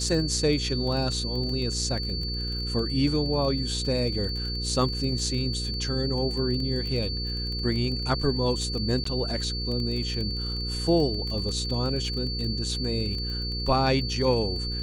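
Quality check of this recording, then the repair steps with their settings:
crackle 22/s -31 dBFS
hum 60 Hz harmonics 8 -32 dBFS
tone 4500 Hz -32 dBFS
9.04–9.05 gap 14 ms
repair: de-click; notch 4500 Hz, Q 30; de-hum 60 Hz, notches 8; interpolate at 9.04, 14 ms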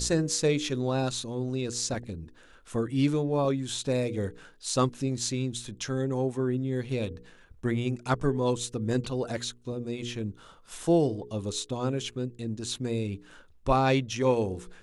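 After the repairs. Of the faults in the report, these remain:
none

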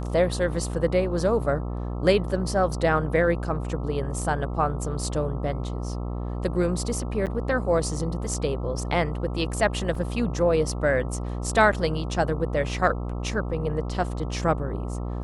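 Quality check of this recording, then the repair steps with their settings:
buzz 60 Hz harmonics 22 -30 dBFS
7.26–7.27 gap 8.1 ms
9.95 gap 3.1 ms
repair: de-hum 60 Hz, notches 22; interpolate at 7.26, 8.1 ms; interpolate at 9.95, 3.1 ms

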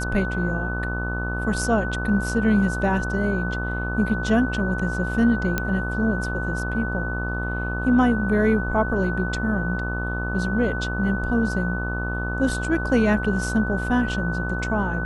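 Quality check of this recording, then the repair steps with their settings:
buzz 60 Hz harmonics 26 -28 dBFS
tone 1500 Hz -29 dBFS
5.58 pop -8 dBFS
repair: de-click; notch 1500 Hz, Q 30; de-hum 60 Hz, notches 26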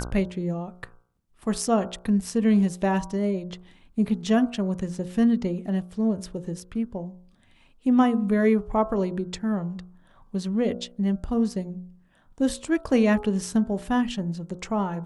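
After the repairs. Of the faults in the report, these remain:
none

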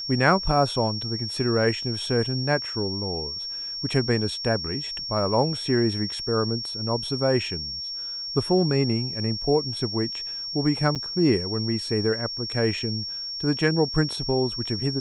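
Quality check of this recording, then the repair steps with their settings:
tone 5500 Hz -30 dBFS
10.95–10.96 gap 7.5 ms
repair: notch 5500 Hz, Q 30; interpolate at 10.95, 7.5 ms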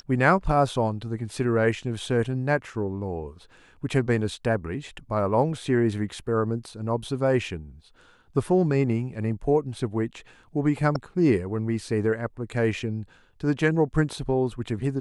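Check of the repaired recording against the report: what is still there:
none

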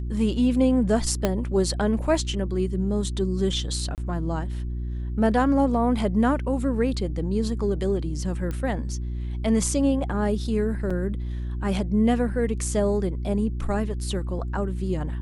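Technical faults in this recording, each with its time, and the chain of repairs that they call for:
hum 60 Hz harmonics 6 -29 dBFS
1.25 pop -8 dBFS
3.95–3.98 gap 28 ms
8.51 pop -19 dBFS
10.9 gap 4.9 ms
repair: de-click; de-hum 60 Hz, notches 6; interpolate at 3.95, 28 ms; interpolate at 10.9, 4.9 ms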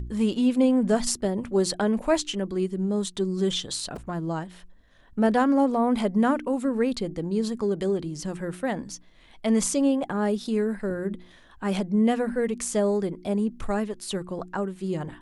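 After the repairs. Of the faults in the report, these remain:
1.25 pop

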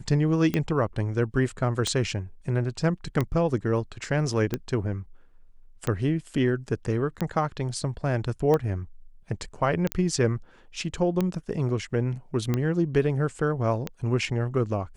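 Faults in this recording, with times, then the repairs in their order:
tick 45 rpm -13 dBFS
9.92 pop -9 dBFS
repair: de-click

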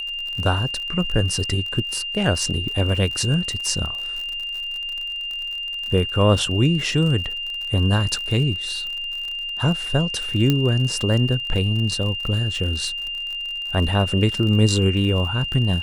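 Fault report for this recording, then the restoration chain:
crackle 48/s -28 dBFS
tone 2800 Hz -26 dBFS
10.5 pop -6 dBFS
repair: de-click; notch 2800 Hz, Q 30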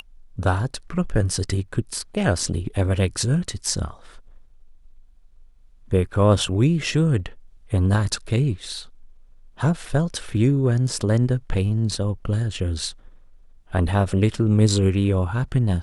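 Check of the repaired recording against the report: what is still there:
none

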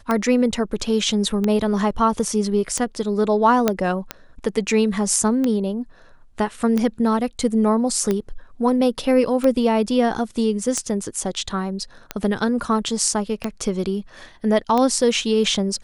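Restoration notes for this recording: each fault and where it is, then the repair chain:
tick 45 rpm -9 dBFS
3.68 pop -3 dBFS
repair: de-click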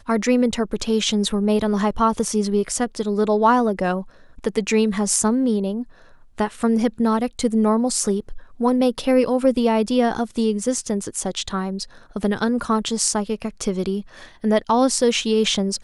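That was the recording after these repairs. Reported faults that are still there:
none

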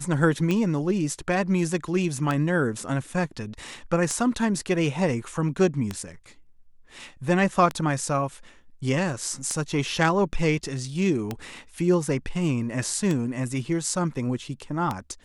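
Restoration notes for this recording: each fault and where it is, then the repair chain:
tick 33 1/3 rpm -13 dBFS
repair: de-click

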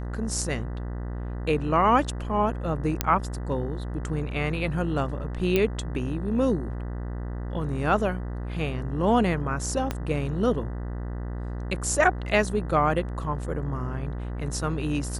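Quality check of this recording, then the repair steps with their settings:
buzz 60 Hz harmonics 33 -32 dBFS
3.01 pop -5 dBFS
5.56 pop -10 dBFS
9.91 pop -13 dBFS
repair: de-click; de-hum 60 Hz, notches 33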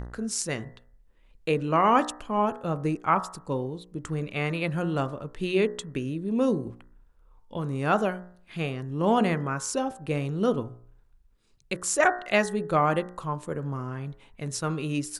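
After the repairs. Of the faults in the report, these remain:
9.91 pop

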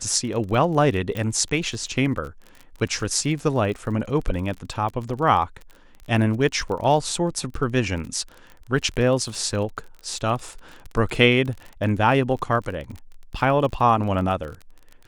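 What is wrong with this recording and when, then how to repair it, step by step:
crackle 33/s -31 dBFS
1.17 pop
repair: de-click

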